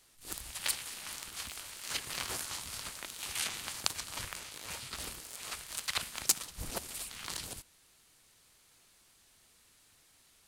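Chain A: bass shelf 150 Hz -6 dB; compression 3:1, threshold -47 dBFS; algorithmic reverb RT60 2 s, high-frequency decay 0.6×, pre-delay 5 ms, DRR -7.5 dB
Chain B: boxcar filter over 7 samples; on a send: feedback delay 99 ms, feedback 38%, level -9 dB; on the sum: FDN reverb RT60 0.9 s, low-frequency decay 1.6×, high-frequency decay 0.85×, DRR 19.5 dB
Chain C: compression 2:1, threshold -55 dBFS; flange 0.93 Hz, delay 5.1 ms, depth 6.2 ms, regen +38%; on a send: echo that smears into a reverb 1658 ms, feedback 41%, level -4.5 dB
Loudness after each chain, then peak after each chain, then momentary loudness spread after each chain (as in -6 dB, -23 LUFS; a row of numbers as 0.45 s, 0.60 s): -41.0 LUFS, -43.5 LUFS, -52.5 LUFS; -18.5 dBFS, -12.0 dBFS, -23.5 dBFS; 17 LU, 8 LU, 8 LU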